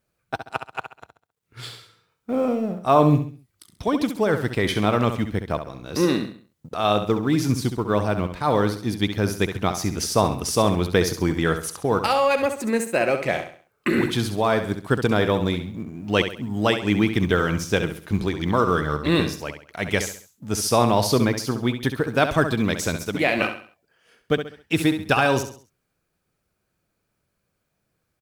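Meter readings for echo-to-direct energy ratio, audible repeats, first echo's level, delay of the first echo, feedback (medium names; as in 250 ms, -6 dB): -8.5 dB, 4, -9.0 dB, 67 ms, 37%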